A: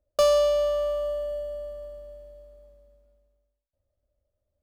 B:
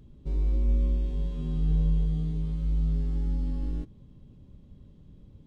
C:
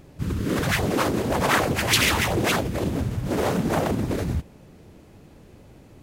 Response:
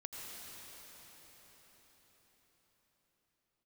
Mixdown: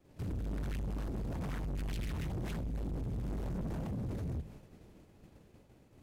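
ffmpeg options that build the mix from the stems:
-filter_complex "[1:a]volume=-5dB[a];[2:a]bandreject=f=50:t=h:w=6,bandreject=f=100:t=h:w=6,bandreject=f=150:t=h:w=6,volume=-1.5dB[b];[a][b]amix=inputs=2:normalize=0,agate=range=-33dB:threshold=-41dB:ratio=3:detection=peak,acrossover=split=200[c][d];[d]acompressor=threshold=-46dB:ratio=4[e];[c][e]amix=inputs=2:normalize=0,asoftclip=type=tanh:threshold=-34.5dB"

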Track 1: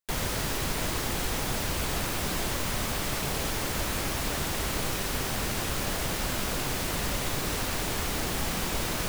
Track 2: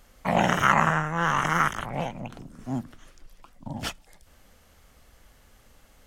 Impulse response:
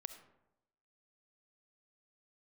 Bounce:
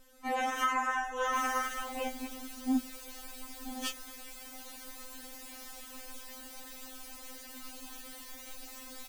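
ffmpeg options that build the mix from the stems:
-filter_complex "[0:a]adelay=1250,volume=-17dB[a];[1:a]alimiter=limit=-13.5dB:level=0:latency=1:release=101,volume=-3.5dB[b];[a][b]amix=inputs=2:normalize=0,highshelf=f=5.1k:g=7,afftfilt=real='re*3.46*eq(mod(b,12),0)':imag='im*3.46*eq(mod(b,12),0)':win_size=2048:overlap=0.75"

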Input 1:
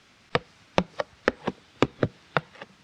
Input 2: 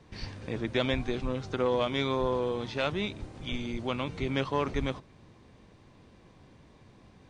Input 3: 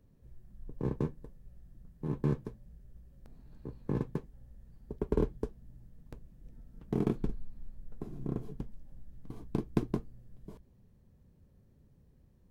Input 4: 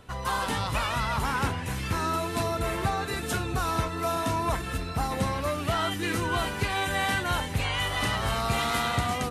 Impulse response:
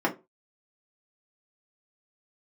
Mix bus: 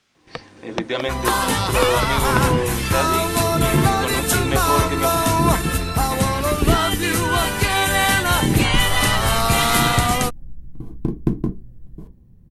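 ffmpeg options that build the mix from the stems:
-filter_complex "[0:a]volume=-9dB[a];[1:a]lowshelf=f=140:g=-9,adelay=150,volume=-5dB,asplit=2[b][c];[c]volume=-14dB[d];[2:a]bass=f=250:g=15,treble=f=4k:g=-4,adelay=1500,volume=-8dB,asplit=2[e][f];[f]volume=-15.5dB[g];[3:a]adelay=1000,volume=1dB[h];[4:a]atrim=start_sample=2205[i];[d][g]amix=inputs=2:normalize=0[j];[j][i]afir=irnorm=-1:irlink=0[k];[a][b][e][h][k]amix=inputs=5:normalize=0,highshelf=f=7.3k:g=10.5,dynaudnorm=f=200:g=7:m=8.5dB"

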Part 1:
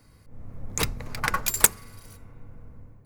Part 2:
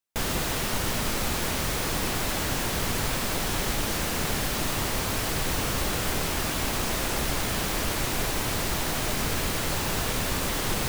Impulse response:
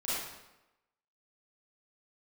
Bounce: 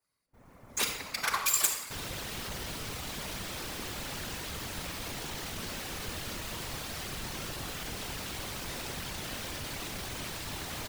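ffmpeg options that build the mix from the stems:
-filter_complex "[0:a]agate=range=-22dB:threshold=-41dB:ratio=16:detection=peak,asplit=2[a][b];[b]highpass=f=720:p=1,volume=26dB,asoftclip=type=tanh:threshold=-1dB[c];[a][c]amix=inputs=2:normalize=0,lowpass=f=3.2k:p=1,volume=-6dB,crystalizer=i=3.5:c=0,volume=-17dB,asplit=2[d][e];[e]volume=-8dB[f];[1:a]asoftclip=type=tanh:threshold=-24dB,adelay=1750,volume=-3.5dB[g];[2:a]atrim=start_sample=2205[h];[f][h]afir=irnorm=-1:irlink=0[i];[d][g][i]amix=inputs=3:normalize=0,afftfilt=real='hypot(re,im)*cos(2*PI*random(0))':imag='hypot(re,im)*sin(2*PI*random(1))':win_size=512:overlap=0.75,adynamicequalizer=threshold=0.00282:dfrequency=3600:dqfactor=0.79:tfrequency=3600:tqfactor=0.79:attack=5:release=100:ratio=0.375:range=2:mode=boostabove:tftype=bell"

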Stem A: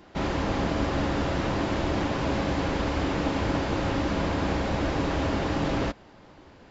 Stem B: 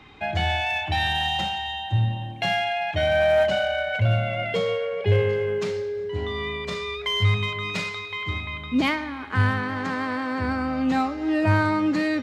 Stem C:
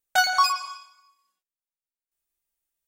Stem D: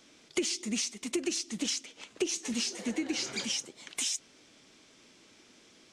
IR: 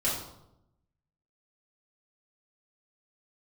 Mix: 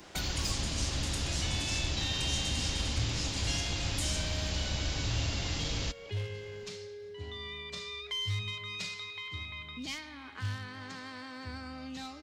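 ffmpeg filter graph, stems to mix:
-filter_complex "[0:a]highshelf=f=2.5k:g=11,volume=-2dB[a];[1:a]asoftclip=type=hard:threshold=-14.5dB,equalizer=f=5.3k:w=0.52:g=9.5,adelay=1050,volume=-12dB[b];[2:a]aphaser=in_gain=1:out_gain=1:delay=3:decay=0.75:speed=0.77:type=sinusoidal,acompressor=threshold=-22dB:ratio=6,volume=-10dB[c];[3:a]highshelf=f=7.7k:g=8,acompressor=threshold=-33dB:ratio=6,volume=-8dB,asplit=2[d][e];[e]volume=-4dB[f];[4:a]atrim=start_sample=2205[g];[f][g]afir=irnorm=-1:irlink=0[h];[a][b][c][d][h]amix=inputs=5:normalize=0,acrossover=split=130|3000[i][j][k];[j]acompressor=threshold=-44dB:ratio=4[l];[i][l][k]amix=inputs=3:normalize=0"

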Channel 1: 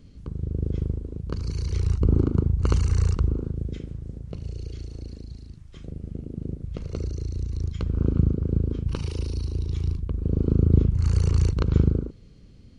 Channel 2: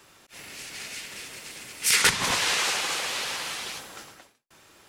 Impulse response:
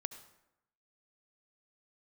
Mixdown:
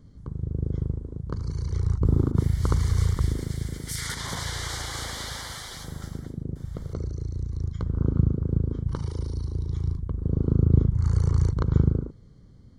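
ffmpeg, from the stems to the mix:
-filter_complex "[0:a]equalizer=f=125:t=o:w=1:g=5,equalizer=f=1k:t=o:w=1:g=6,equalizer=f=4k:t=o:w=1:g=-4,volume=-3.5dB[a];[1:a]alimiter=limit=-19.5dB:level=0:latency=1:release=67,adelay=2050,volume=-4dB[b];[a][b]amix=inputs=2:normalize=0,asuperstop=centerf=2600:order=4:qfactor=2.9"

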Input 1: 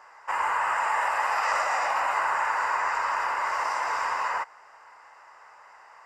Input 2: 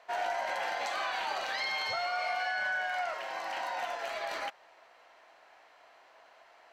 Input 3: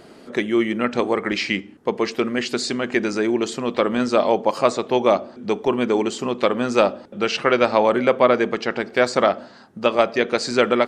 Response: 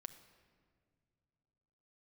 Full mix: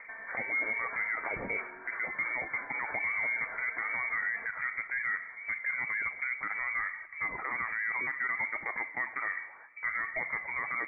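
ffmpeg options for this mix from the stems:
-filter_complex "[0:a]asoftclip=type=tanh:threshold=-22.5dB,aeval=exprs='val(0)*pow(10,-18*(0.5-0.5*cos(2*PI*3.1*n/s))/20)':c=same,volume=-11.5dB[a];[1:a]aecho=1:1:4.4:0.84,acompressor=threshold=-37dB:ratio=6,volume=-6dB[b];[2:a]aphaser=in_gain=1:out_gain=1:delay=3.3:decay=0.45:speed=0.64:type=triangular,volume=-5dB,asplit=2[c][d];[d]volume=-11.5dB[e];[a][c]amix=inputs=2:normalize=0,lowpass=f=1.7k:p=1,acompressor=threshold=-23dB:ratio=6,volume=0dB[f];[3:a]atrim=start_sample=2205[g];[e][g]afir=irnorm=-1:irlink=0[h];[b][f][h]amix=inputs=3:normalize=0,aemphasis=mode=production:type=bsi,lowpass=f=2.1k:t=q:w=0.5098,lowpass=f=2.1k:t=q:w=0.6013,lowpass=f=2.1k:t=q:w=0.9,lowpass=f=2.1k:t=q:w=2.563,afreqshift=-2500,alimiter=level_in=0.5dB:limit=-24dB:level=0:latency=1:release=30,volume=-0.5dB"

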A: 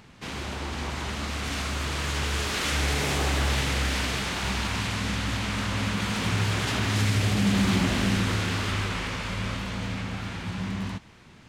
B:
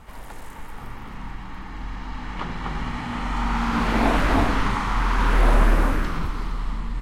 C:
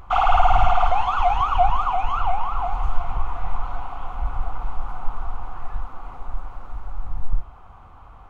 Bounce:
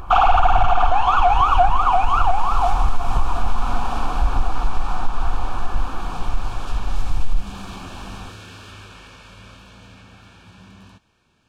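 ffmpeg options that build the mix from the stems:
-filter_complex "[0:a]equalizer=f=160:t=o:w=1.8:g=-5,volume=-10.5dB[a];[1:a]acompressor=threshold=-21dB:ratio=6,volume=-8.5dB[b];[2:a]equalizer=f=330:t=o:w=0.42:g=5.5,acontrast=86,volume=1dB[c];[a][b][c]amix=inputs=3:normalize=0,asuperstop=centerf=2000:order=12:qfactor=5.7,acompressor=threshold=-10dB:ratio=4"

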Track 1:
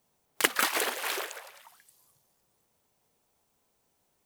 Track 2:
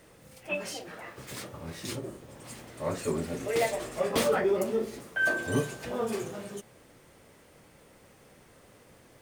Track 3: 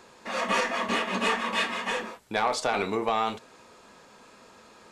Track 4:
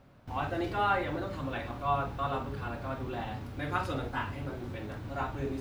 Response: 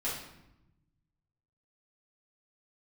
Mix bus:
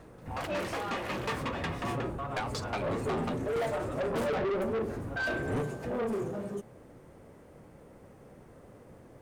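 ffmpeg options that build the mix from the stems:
-filter_complex "[0:a]volume=-1.5dB[a];[1:a]equalizer=f=3.4k:w=0.46:g=-12.5,acontrast=63,volume=-0.5dB[b];[2:a]dynaudnorm=f=150:g=13:m=10.5dB,asoftclip=type=tanh:threshold=-12.5dB,aeval=exprs='val(0)*pow(10,-28*if(lt(mod(5.5*n/s,1),2*abs(5.5)/1000),1-mod(5.5*n/s,1)/(2*abs(5.5)/1000),(mod(5.5*n/s,1)-2*abs(5.5)/1000)/(1-2*abs(5.5)/1000))/20)':c=same,volume=-4dB[c];[3:a]lowpass=2.2k,volume=2.5dB[d];[a][d]amix=inputs=2:normalize=0,asoftclip=type=tanh:threshold=-20.5dB,acompressor=threshold=-33dB:ratio=6,volume=0dB[e];[b][c][e]amix=inputs=3:normalize=0,aemphasis=mode=reproduction:type=50kf,asoftclip=type=tanh:threshold=-28dB"

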